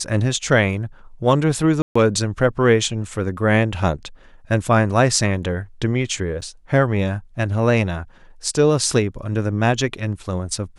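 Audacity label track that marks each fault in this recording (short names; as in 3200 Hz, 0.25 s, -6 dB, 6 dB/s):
1.820000	1.960000	gap 0.135 s
6.410000	6.420000	gap 8.5 ms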